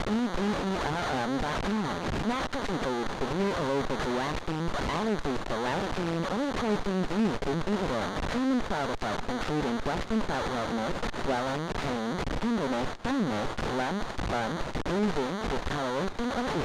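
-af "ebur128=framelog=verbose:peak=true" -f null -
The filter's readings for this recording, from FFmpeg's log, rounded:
Integrated loudness:
  I:         -30.3 LUFS
  Threshold: -40.3 LUFS
Loudness range:
  LRA:         1.2 LU
  Threshold: -50.3 LUFS
  LRA low:   -30.8 LUFS
  LRA high:  -29.6 LUFS
True peak:
  Peak:      -17.0 dBFS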